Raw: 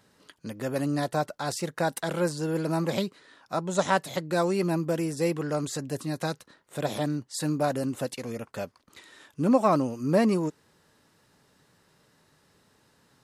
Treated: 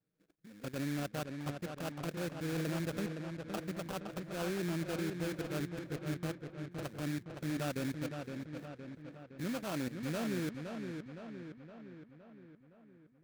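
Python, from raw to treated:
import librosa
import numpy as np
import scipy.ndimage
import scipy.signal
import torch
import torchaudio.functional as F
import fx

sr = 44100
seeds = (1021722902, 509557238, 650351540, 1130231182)

y = fx.wiener(x, sr, points=41)
y = fx.high_shelf(y, sr, hz=8400.0, db=-9.5)
y = fx.level_steps(y, sr, step_db=16)
y = fx.env_flanger(y, sr, rest_ms=6.5, full_db=-29.0)
y = fx.sample_hold(y, sr, seeds[0], rate_hz=2000.0, jitter_pct=20)
y = fx.echo_filtered(y, sr, ms=515, feedback_pct=58, hz=3800.0, wet_db=-6.0)
y = y * librosa.db_to_amplitude(-3.5)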